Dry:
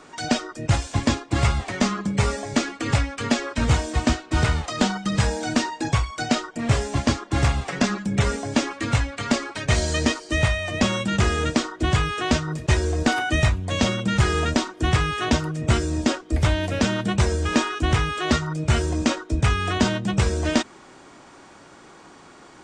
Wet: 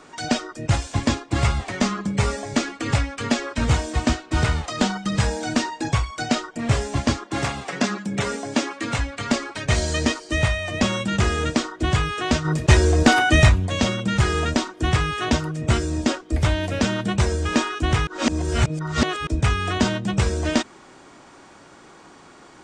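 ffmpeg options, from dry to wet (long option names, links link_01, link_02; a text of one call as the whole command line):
ffmpeg -i in.wav -filter_complex "[0:a]asettb=1/sr,asplit=3[link_01][link_02][link_03];[link_01]atrim=end=7.274[link_04];[link_02]atrim=start=7.27:end=8.99,asetpts=PTS-STARTPTS,afade=type=in:duration=0.004:curve=qsin,afade=type=out:start_time=1.716:duration=0.004:curve=qsin,highpass=170[link_05];[link_03]atrim=start=8.986[link_06];[link_04][link_05]acrossfade=duration=0.004:curve1=hsin:curve2=qsin[link_07];[link_07][link_06]acrossfade=duration=0.004:curve1=qsin:curve2=hsin,asplit=3[link_08][link_09][link_10];[link_08]afade=type=out:start_time=12.44:duration=0.02[link_11];[link_09]acontrast=64,afade=type=in:start_time=12.44:duration=0.02,afade=type=out:start_time=13.66:duration=0.02[link_12];[link_10]afade=type=in:start_time=13.66:duration=0.02[link_13];[link_11][link_12][link_13]amix=inputs=3:normalize=0,asplit=3[link_14][link_15][link_16];[link_14]atrim=end=18.072[link_17];[link_15]atrim=start=18.068:end=19.272,asetpts=PTS-STARTPTS,areverse[link_18];[link_16]atrim=start=19.268[link_19];[link_17][link_18]acrossfade=duration=0.004:curve1=hsin:curve2=hsin[link_20];[link_20][link_19]acrossfade=duration=0.004:curve1=hsin:curve2=hsin" out.wav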